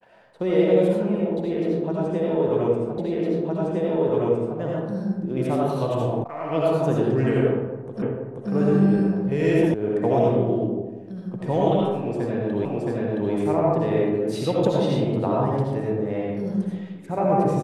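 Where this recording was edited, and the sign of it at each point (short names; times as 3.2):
2.98 repeat of the last 1.61 s
6.24 sound cut off
8.02 repeat of the last 0.48 s
9.74 sound cut off
12.65 repeat of the last 0.67 s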